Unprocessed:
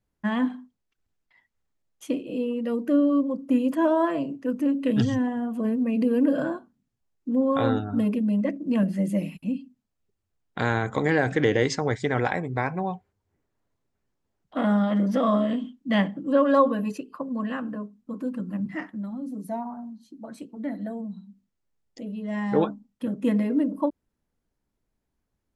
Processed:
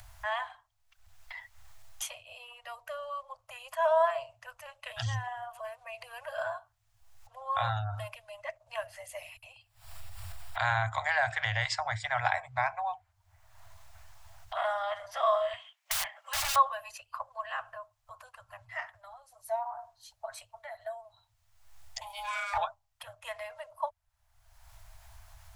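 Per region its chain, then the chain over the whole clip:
0:09.56–0:12.47: notch filter 6,300 Hz, Q 5.4 + upward compression, threshold −31 dBFS
0:15.53–0:16.56: high-pass filter 840 Hz + parametric band 2,200 Hz +9.5 dB 0.67 octaves + wrap-around overflow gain 27 dB
0:22.01–0:22.58: high-pass filter 350 Hz 24 dB per octave + ring modulation 400 Hz + spectral tilt +4 dB per octave
whole clip: upward compression, threshold −27 dBFS; Chebyshev band-stop filter 110–640 Hz, order 5

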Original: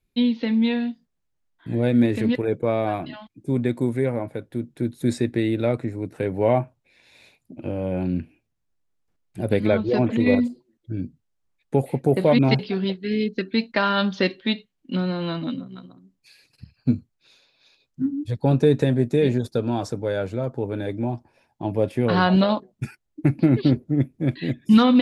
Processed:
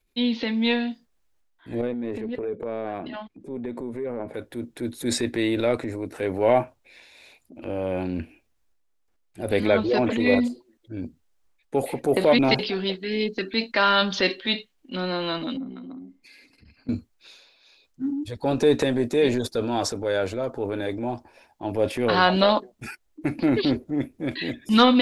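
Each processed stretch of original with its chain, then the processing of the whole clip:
0:01.81–0:04.34: low-pass filter 2,500 Hz 6 dB per octave + hollow resonant body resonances 200/420 Hz, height 9 dB, ringing for 30 ms + downward compressor 4 to 1, threshold −28 dBFS
0:15.57–0:16.89: high-shelf EQ 3,900 Hz −7.5 dB + downward compressor, threshold −42 dBFS + hollow resonant body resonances 260/2,100 Hz, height 18 dB
whole clip: dynamic equaliser 4,300 Hz, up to +3 dB, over −42 dBFS, Q 0.72; transient designer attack −4 dB, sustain +6 dB; parametric band 140 Hz −14.5 dB 1.2 octaves; level +2.5 dB

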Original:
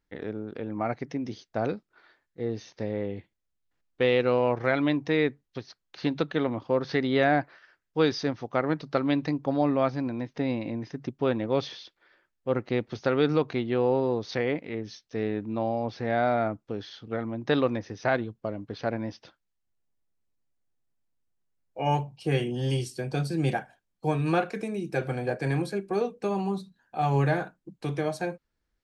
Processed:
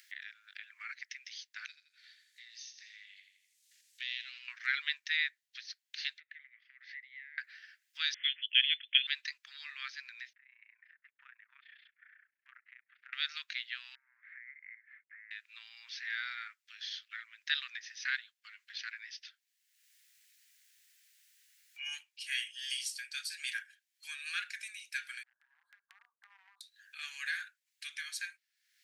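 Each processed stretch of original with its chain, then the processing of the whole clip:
0:01.66–0:04.48: resonant band-pass 7,500 Hz, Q 1 + repeating echo 83 ms, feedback 38%, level −10.5 dB
0:06.18–0:07.38: downward compressor 12 to 1, threshold −33 dBFS + resonant band-pass 2,000 Hz, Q 9 + one half of a high-frequency compander decoder only
0:08.14–0:09.07: Bessel high-pass filter 580 Hz, order 6 + voice inversion scrambler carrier 3,800 Hz
0:10.33–0:13.13: Bessel low-pass filter 1,200 Hz, order 6 + downward compressor 1.5 to 1, threshold −59 dBFS + amplitude modulation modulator 30 Hz, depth 70%
0:13.95–0:15.31: variable-slope delta modulation 64 kbit/s + downward compressor, threshold −38 dBFS + Chebyshev low-pass with heavy ripple 2,200 Hz, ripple 3 dB
0:25.23–0:26.61: elliptic low-pass filter 950 Hz, stop band 60 dB + downward compressor 5 to 1, threshold −33 dBFS
whole clip: Butterworth high-pass 1,700 Hz 48 dB per octave; dynamic equaliser 2,300 Hz, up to −4 dB, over −48 dBFS, Q 2.5; upward compression, threshold −51 dBFS; level +4 dB

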